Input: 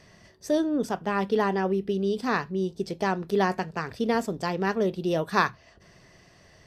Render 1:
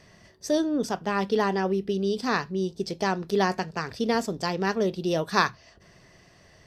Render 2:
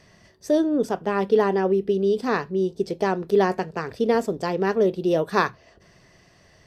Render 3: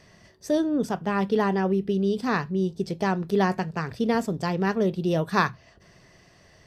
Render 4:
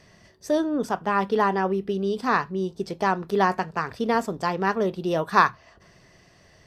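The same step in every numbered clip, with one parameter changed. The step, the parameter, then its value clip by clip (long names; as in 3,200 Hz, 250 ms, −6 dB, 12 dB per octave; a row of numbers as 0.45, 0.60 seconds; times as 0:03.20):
dynamic equaliser, frequency: 5,200, 440, 140, 1,100 Hertz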